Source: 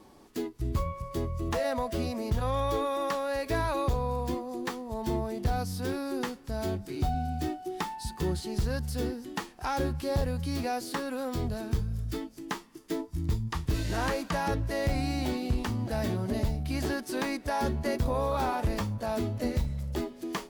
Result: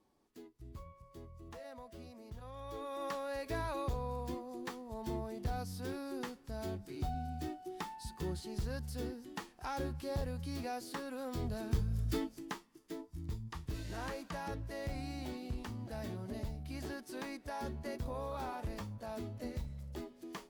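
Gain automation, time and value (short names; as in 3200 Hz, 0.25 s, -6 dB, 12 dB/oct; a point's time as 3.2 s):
2.54 s -20 dB
3.06 s -9 dB
11.14 s -9 dB
12.24 s 0 dB
12.66 s -12 dB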